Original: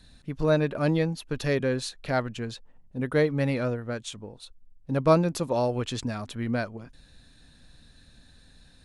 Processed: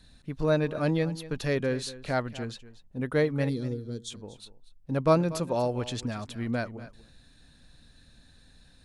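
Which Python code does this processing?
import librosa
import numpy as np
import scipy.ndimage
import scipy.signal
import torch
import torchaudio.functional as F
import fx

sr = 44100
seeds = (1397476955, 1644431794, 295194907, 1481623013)

y = fx.spec_box(x, sr, start_s=3.49, length_s=0.61, low_hz=490.0, high_hz=3100.0, gain_db=-20)
y = y + 10.0 ** (-16.5 / 20.0) * np.pad(y, (int(239 * sr / 1000.0), 0))[:len(y)]
y = y * librosa.db_to_amplitude(-2.0)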